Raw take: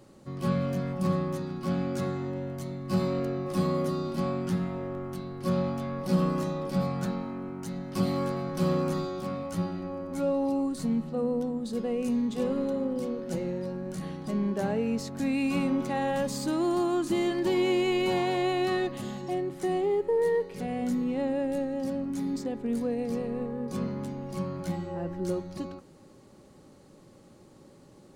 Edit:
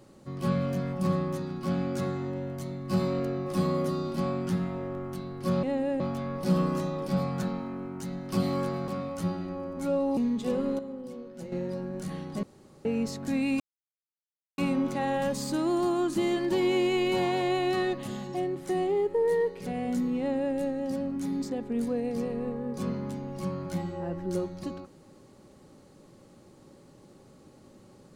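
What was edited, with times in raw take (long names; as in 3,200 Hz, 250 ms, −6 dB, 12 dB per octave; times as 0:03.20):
0:08.51–0:09.22: remove
0:10.51–0:12.09: remove
0:12.71–0:13.44: clip gain −9 dB
0:14.35–0:14.77: fill with room tone
0:15.52: splice in silence 0.98 s
0:21.13–0:21.50: duplicate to 0:05.63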